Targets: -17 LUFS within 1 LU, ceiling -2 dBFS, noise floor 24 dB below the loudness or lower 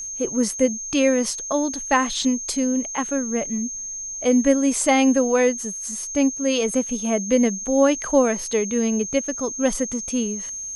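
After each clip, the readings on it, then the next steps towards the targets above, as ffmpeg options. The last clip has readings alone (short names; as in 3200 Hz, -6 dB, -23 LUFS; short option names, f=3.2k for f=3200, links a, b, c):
steady tone 6400 Hz; tone level -29 dBFS; loudness -21.5 LUFS; peak -5.0 dBFS; loudness target -17.0 LUFS
-> -af "bandreject=f=6.4k:w=30"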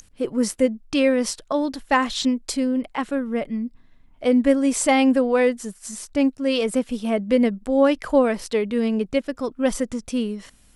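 steady tone none; loudness -22.0 LUFS; peak -5.5 dBFS; loudness target -17.0 LUFS
-> -af "volume=5dB,alimiter=limit=-2dB:level=0:latency=1"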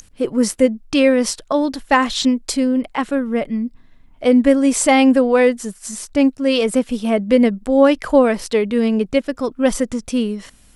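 loudness -17.0 LUFS; peak -2.0 dBFS; noise floor -49 dBFS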